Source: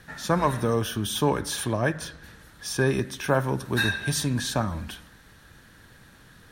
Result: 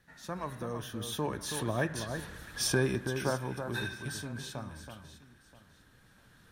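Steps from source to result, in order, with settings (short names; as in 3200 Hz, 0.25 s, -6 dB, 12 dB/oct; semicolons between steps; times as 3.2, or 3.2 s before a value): recorder AGC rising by 7.2 dB/s; Doppler pass-by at 2.35, 9 m/s, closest 4.2 m; echo with dull and thin repeats by turns 0.326 s, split 1900 Hz, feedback 50%, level -7 dB; gain -2.5 dB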